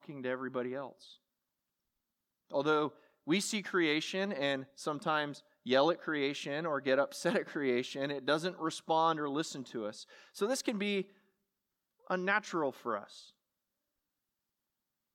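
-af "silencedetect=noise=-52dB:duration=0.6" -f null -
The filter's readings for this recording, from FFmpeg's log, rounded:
silence_start: 1.14
silence_end: 2.50 | silence_duration: 1.36
silence_start: 11.06
silence_end: 12.07 | silence_duration: 1.02
silence_start: 13.29
silence_end: 15.15 | silence_duration: 1.85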